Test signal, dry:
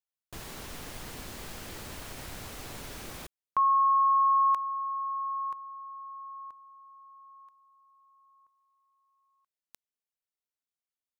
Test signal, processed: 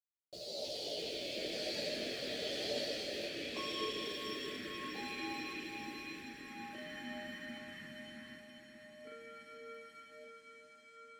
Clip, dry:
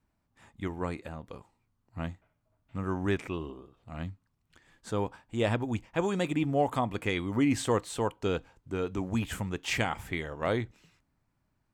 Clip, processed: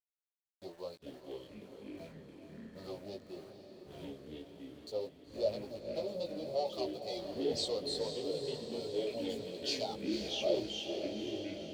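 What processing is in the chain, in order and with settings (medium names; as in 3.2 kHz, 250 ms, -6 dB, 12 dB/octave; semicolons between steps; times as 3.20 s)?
expander on every frequency bin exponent 2; compression, threshold -28 dBFS; waveshaping leveller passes 5; two resonant band-passes 1.6 kHz, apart 2.9 oct; rotary cabinet horn 1 Hz; small samples zeroed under -58.5 dBFS; chorus 0.44 Hz, delay 16 ms, depth 3.4 ms; ever faster or slower copies 196 ms, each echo -5 st, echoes 3; echo that smears into a reverb 503 ms, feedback 63%, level -8 dB; trim +4.5 dB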